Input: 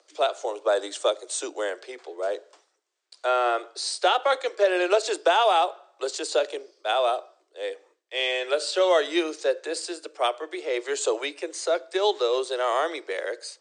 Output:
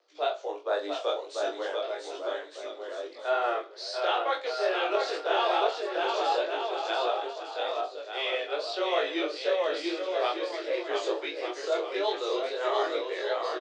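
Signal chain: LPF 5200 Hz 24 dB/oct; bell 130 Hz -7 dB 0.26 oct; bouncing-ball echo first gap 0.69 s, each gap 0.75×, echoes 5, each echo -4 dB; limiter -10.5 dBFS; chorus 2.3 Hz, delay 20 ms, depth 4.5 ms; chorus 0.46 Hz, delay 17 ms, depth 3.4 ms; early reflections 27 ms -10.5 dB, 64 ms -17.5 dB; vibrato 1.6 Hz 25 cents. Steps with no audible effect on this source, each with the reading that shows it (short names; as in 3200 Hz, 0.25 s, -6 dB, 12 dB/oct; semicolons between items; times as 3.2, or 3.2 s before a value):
bell 130 Hz: input band starts at 270 Hz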